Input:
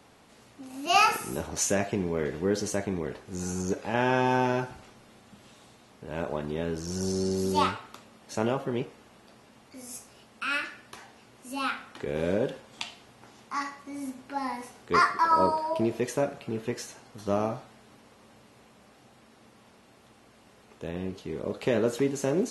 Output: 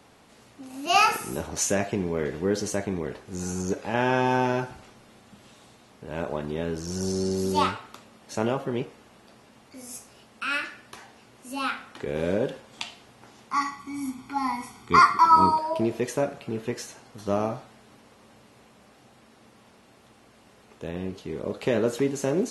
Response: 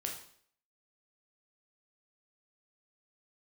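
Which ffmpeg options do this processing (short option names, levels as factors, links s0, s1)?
-filter_complex "[0:a]asettb=1/sr,asplit=3[s0][s1][s2];[s0]atrim=end=13.534[s3];[s1]atrim=start=13.53:end=15.59,asetpts=PTS-STARTPTS,afade=t=in:d=0.004:c=qsin,afade=t=out:st=2.056:d=0.004:c=qsin,aecho=1:1:0.9:0.92,atrim=end_sample=90846[s4];[s2]atrim=start=15.586[s5];[s3][s4]acrossfade=d=0.004:c1=hsin:c2=qsin[s6];[s6][s5]acrossfade=d=0.004:c1=qsin:c2=hsin,volume=1.19"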